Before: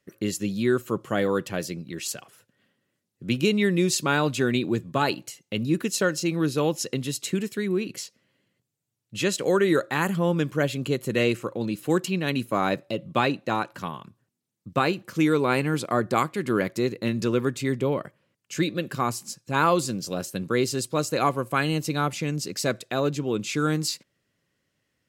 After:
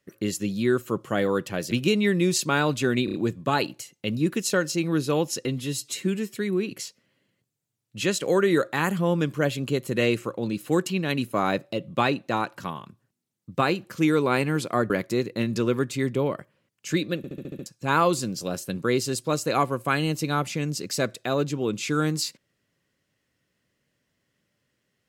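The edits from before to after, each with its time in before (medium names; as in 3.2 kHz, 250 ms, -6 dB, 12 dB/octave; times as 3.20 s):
1.71–3.28 s: delete
4.62 s: stutter 0.03 s, 4 plays
6.93–7.53 s: stretch 1.5×
16.08–16.56 s: delete
18.83 s: stutter in place 0.07 s, 7 plays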